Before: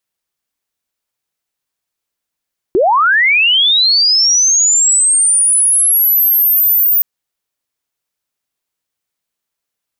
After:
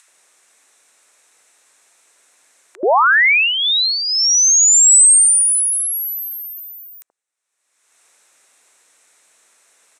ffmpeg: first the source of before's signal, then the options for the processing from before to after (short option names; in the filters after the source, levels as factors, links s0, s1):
-f lavfi -i "aevalsrc='pow(10,(-7.5-0.5*t/4.27)/20)*sin(2*PI*(330*t+14670*t*t/(2*4.27)))':d=4.27:s=44100"
-filter_complex "[0:a]acompressor=mode=upward:threshold=0.0398:ratio=2.5,highpass=480,equalizer=f=3100:t=q:w=4:g=-8,equalizer=f=4700:t=q:w=4:g=-10,equalizer=f=8200:t=q:w=4:g=4,lowpass=f=9300:w=0.5412,lowpass=f=9300:w=1.3066,acrossover=split=950[s0][s1];[s0]adelay=80[s2];[s2][s1]amix=inputs=2:normalize=0"